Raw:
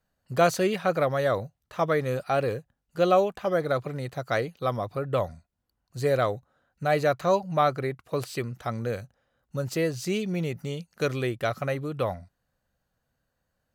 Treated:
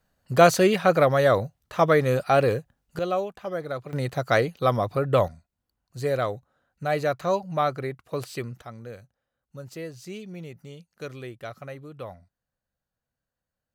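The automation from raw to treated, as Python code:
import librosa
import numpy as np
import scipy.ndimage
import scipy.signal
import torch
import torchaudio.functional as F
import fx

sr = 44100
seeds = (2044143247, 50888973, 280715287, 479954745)

y = fx.gain(x, sr, db=fx.steps((0.0, 5.5), (2.99, -5.5), (3.93, 5.5), (5.28, -1.5), (8.62, -10.0)))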